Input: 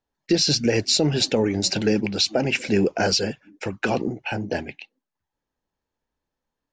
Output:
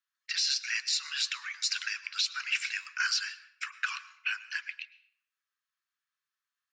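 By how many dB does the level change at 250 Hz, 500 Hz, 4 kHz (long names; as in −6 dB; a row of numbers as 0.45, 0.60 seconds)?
below −40 dB, below −40 dB, −7.0 dB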